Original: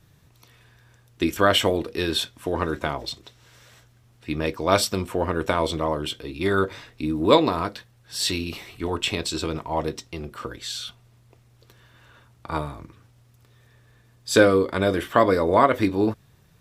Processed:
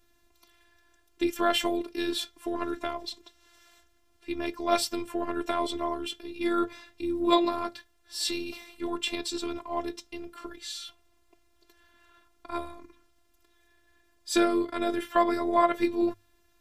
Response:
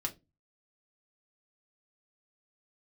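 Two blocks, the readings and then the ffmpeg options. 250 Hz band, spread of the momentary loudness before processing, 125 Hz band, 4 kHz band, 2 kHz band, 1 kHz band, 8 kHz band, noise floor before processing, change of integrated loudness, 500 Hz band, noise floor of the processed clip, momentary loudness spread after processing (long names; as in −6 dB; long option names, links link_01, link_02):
−4.0 dB, 16 LU, −21.5 dB, −6.5 dB, −9.0 dB, −4.5 dB, −6.0 dB, −57 dBFS, −6.0 dB, −8.0 dB, −66 dBFS, 15 LU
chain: -af "afftfilt=real='hypot(re,im)*cos(PI*b)':imag='0':win_size=512:overlap=0.75,bandreject=frequency=50:width_type=h:width=6,bandreject=frequency=100:width_type=h:width=6,volume=-2.5dB"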